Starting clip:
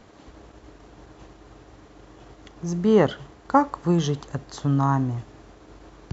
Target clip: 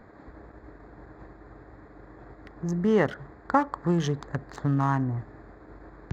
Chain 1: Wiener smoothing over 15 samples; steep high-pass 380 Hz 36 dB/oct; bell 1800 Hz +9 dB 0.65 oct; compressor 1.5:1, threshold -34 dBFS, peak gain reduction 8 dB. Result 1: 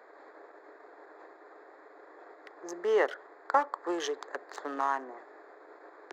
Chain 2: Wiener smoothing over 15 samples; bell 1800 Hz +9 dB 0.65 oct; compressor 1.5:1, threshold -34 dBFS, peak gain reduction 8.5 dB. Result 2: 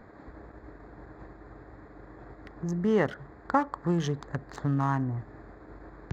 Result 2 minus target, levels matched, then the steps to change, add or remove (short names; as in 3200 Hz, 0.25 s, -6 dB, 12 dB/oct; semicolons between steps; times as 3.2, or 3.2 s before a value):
compressor: peak gain reduction +2.5 dB
change: compressor 1.5:1, threshold -26.5 dBFS, peak gain reduction 6 dB